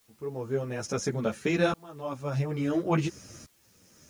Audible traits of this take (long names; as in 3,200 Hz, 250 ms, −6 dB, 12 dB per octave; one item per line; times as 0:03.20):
tremolo saw up 0.58 Hz, depth 100%
a quantiser's noise floor 12 bits, dither triangular
a shimmering, thickened sound